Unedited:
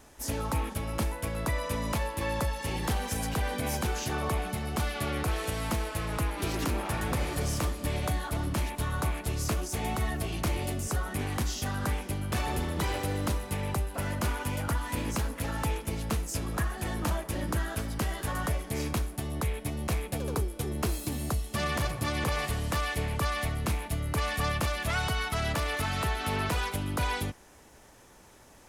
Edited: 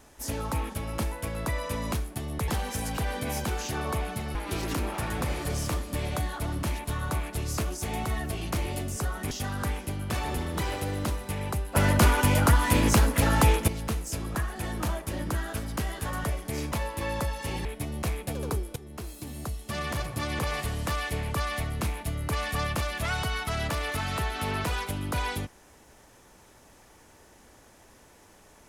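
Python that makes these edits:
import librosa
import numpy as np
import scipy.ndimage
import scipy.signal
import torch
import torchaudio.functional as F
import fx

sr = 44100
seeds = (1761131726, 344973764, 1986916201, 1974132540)

y = fx.edit(x, sr, fx.swap(start_s=1.92, length_s=0.93, other_s=18.94, other_length_s=0.56),
    fx.cut(start_s=4.72, length_s=1.54),
    fx.cut(start_s=11.22, length_s=0.31),
    fx.clip_gain(start_s=13.97, length_s=1.93, db=10.0),
    fx.fade_in_from(start_s=20.61, length_s=2.06, curve='qsin', floor_db=-14.0), tone=tone)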